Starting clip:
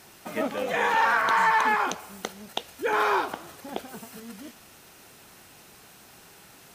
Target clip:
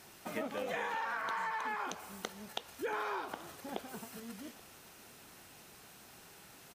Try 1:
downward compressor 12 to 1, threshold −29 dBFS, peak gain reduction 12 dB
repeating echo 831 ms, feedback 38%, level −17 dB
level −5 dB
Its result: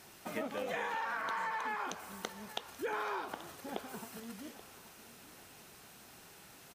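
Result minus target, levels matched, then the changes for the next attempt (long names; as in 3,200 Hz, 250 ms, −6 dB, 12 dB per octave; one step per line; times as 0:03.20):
echo-to-direct +7 dB
change: repeating echo 831 ms, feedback 38%, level −24 dB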